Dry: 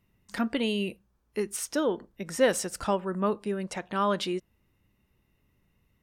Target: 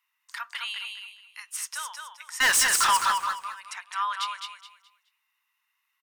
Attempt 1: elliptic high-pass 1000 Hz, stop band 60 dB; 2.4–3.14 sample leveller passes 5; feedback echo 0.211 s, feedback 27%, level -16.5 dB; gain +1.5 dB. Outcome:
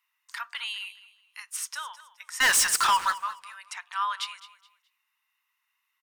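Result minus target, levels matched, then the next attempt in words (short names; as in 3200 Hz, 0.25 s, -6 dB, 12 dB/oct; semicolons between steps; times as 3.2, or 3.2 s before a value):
echo-to-direct -11.5 dB
elliptic high-pass 1000 Hz, stop band 60 dB; 2.4–3.14 sample leveller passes 5; feedback echo 0.211 s, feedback 27%, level -5 dB; gain +1.5 dB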